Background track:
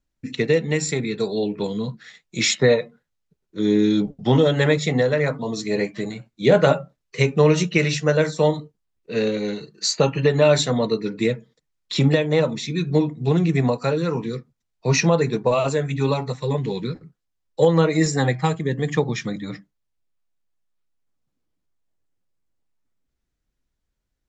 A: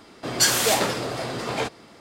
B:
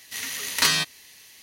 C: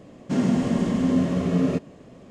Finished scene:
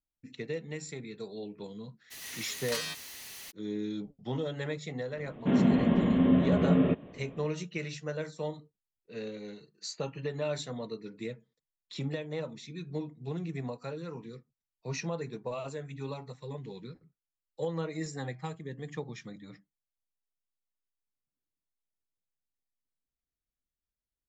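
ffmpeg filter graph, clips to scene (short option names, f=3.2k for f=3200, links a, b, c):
-filter_complex "[0:a]volume=-17.5dB[a];[2:a]aeval=exprs='val(0)+0.5*0.0668*sgn(val(0))':c=same[b];[3:a]aresample=8000,aresample=44100[c];[b]atrim=end=1.42,asetpts=PTS-STARTPTS,volume=-17dB,afade=t=in:d=0.02,afade=t=out:st=1.4:d=0.02,adelay=2100[d];[c]atrim=end=2.3,asetpts=PTS-STARTPTS,volume=-2.5dB,afade=t=in:d=0.004:c=hsin,afade=t=out:st=2.296:d=0.004:c=hsin,adelay=5160[e];[a][d][e]amix=inputs=3:normalize=0"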